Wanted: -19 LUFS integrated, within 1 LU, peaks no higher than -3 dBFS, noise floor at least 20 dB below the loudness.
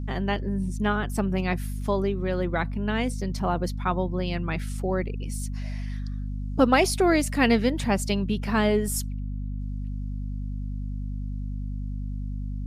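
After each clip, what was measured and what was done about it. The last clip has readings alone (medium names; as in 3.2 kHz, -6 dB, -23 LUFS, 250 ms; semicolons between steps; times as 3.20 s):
hum 50 Hz; highest harmonic 250 Hz; hum level -28 dBFS; loudness -27.0 LUFS; peak level -8.0 dBFS; loudness target -19.0 LUFS
-> de-hum 50 Hz, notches 5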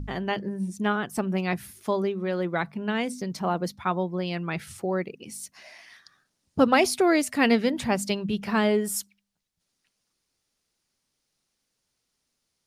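hum not found; loudness -26.5 LUFS; peak level -7.0 dBFS; loudness target -19.0 LUFS
-> trim +7.5 dB; peak limiter -3 dBFS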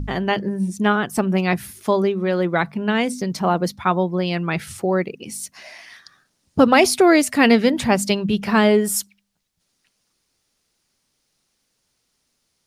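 loudness -19.0 LUFS; peak level -3.0 dBFS; noise floor -71 dBFS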